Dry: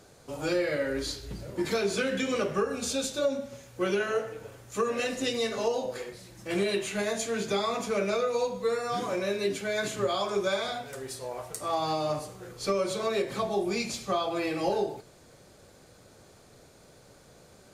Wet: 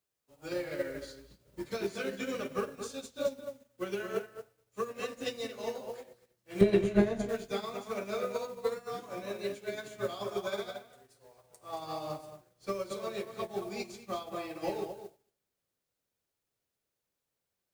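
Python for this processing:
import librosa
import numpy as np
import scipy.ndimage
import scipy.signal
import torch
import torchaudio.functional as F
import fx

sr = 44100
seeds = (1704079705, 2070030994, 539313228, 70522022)

p1 = fx.quant_dither(x, sr, seeds[0], bits=6, dither='triangular')
p2 = x + (p1 * 10.0 ** (-11.5 / 20.0))
p3 = fx.tilt_eq(p2, sr, slope=-4.0, at=(6.61, 7.29))
p4 = fx.echo_filtered(p3, sr, ms=226, feedback_pct=18, hz=2500.0, wet_db=-3.5)
y = fx.upward_expand(p4, sr, threshold_db=-44.0, expansion=2.5)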